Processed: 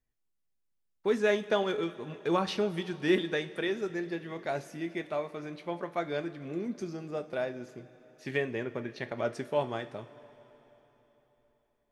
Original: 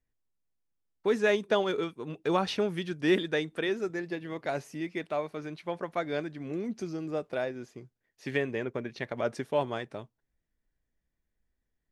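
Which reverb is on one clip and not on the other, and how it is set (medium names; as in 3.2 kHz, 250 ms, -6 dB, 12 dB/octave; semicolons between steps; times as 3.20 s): two-slope reverb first 0.28 s, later 4 s, from -18 dB, DRR 8.5 dB; trim -2 dB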